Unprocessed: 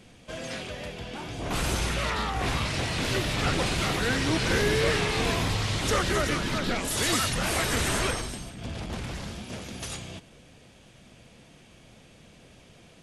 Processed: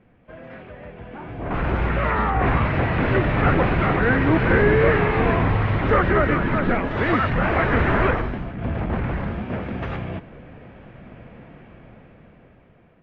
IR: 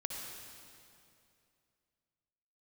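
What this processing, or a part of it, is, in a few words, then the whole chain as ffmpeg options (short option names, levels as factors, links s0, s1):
action camera in a waterproof case: -af "lowpass=f=2000:w=0.5412,lowpass=f=2000:w=1.3066,dynaudnorm=f=370:g=9:m=5.62,volume=0.708" -ar 16000 -c:a aac -b:a 64k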